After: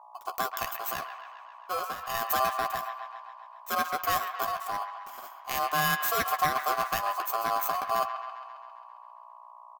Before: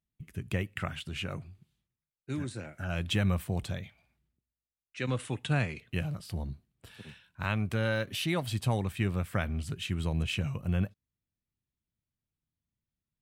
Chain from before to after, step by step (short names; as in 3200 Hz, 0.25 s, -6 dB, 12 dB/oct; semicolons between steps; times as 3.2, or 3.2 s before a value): FFT order left unsorted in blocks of 16 samples; in parallel at 0 dB: limiter -22 dBFS, peak gain reduction 7 dB; on the sum: transient shaper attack -1 dB, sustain -6 dB; speed mistake 33 rpm record played at 45 rpm; hum 60 Hz, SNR 18 dB; ring modulator 910 Hz; tilt shelf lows -4 dB; doubler 12 ms -10.5 dB; on a send: band-limited delay 0.134 s, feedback 65%, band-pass 1600 Hz, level -7 dB